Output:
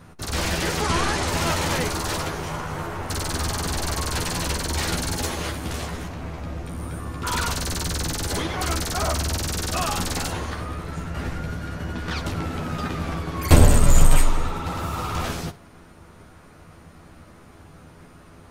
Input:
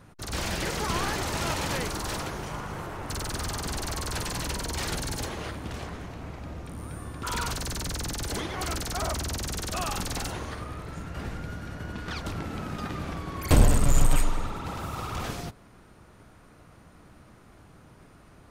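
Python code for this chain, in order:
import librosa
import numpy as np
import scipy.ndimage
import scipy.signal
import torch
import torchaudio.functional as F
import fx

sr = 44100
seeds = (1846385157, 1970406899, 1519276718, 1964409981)

y = fx.lowpass(x, sr, hz=11000.0, slope=24, at=(0.81, 1.28))
y = fx.high_shelf(y, sr, hz=5200.0, db=10.0, at=(5.24, 6.08))
y = fx.room_early_taps(y, sr, ms=(12, 65), db=(-4.5, -17.0))
y = y * 10.0 ** (4.5 / 20.0)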